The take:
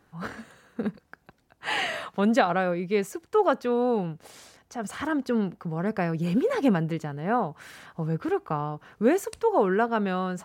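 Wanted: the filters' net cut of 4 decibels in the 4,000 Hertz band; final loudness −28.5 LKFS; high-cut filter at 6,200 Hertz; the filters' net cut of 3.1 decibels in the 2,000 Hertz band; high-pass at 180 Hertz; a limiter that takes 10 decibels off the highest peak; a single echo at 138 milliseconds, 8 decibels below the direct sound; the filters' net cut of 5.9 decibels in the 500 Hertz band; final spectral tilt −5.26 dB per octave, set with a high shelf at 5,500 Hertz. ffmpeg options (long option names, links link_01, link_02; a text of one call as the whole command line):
ffmpeg -i in.wav -af "highpass=180,lowpass=6200,equalizer=frequency=500:width_type=o:gain=-7,equalizer=frequency=2000:width_type=o:gain=-3,equalizer=frequency=4000:width_type=o:gain=-6,highshelf=frequency=5500:gain=6,alimiter=limit=-20dB:level=0:latency=1,aecho=1:1:138:0.398,volume=3dB" out.wav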